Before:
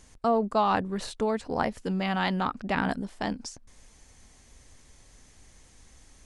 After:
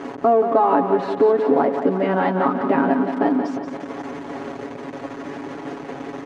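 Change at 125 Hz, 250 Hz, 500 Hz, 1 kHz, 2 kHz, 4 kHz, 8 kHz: +3.5 dB, +10.0 dB, +13.0 dB, +8.5 dB, +4.0 dB, -4.0 dB, n/a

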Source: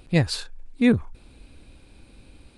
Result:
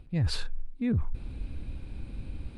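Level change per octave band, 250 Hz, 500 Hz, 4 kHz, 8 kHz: -10.0 dB, -15.0 dB, -6.5 dB, n/a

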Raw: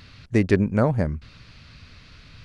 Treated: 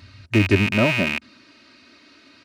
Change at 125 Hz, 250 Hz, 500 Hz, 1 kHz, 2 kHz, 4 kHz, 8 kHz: +1.0 dB, +1.0 dB, 0.0 dB, +1.5 dB, +11.0 dB, +15.5 dB, n/a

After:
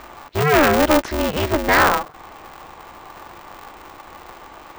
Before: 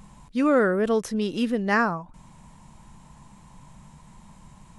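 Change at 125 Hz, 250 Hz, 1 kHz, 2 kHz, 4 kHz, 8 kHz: +9.5, +2.0, +10.0, +9.0, +13.0, +13.0 dB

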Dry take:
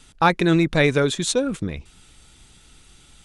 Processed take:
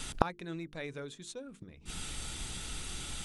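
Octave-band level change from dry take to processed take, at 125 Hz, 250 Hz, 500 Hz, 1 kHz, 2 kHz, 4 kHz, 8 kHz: -18.0, -20.5, -19.0, -14.0, -19.0, -13.0, -9.5 dB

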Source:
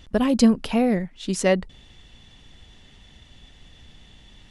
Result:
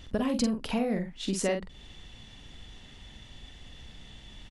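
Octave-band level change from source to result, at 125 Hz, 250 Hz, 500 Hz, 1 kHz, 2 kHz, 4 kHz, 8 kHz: -7.5, -9.5, -8.5, -8.0, -8.0, -4.5, -4.5 dB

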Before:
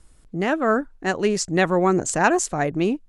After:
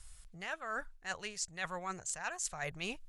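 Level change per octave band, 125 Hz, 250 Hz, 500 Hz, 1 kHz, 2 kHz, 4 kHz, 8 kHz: -22.5, -28.0, -25.0, -19.0, -14.5, -10.5, -11.5 dB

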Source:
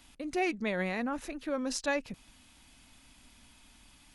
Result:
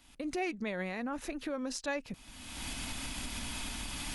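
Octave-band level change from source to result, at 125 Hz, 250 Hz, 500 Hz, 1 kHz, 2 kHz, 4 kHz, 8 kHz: +0.5, -2.5, -4.0, -3.5, -3.0, +4.0, +3.0 dB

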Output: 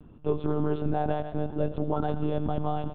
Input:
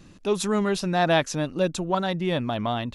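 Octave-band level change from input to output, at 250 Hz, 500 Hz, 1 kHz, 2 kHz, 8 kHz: -3.5 dB, -5.0 dB, -5.0 dB, -16.5 dB, under -40 dB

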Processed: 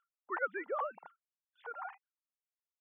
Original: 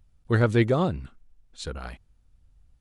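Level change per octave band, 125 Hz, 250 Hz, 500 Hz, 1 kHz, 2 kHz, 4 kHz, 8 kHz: under -40 dB, -26.5 dB, -14.0 dB, -5.0 dB, -7.0 dB, under -25 dB, under -30 dB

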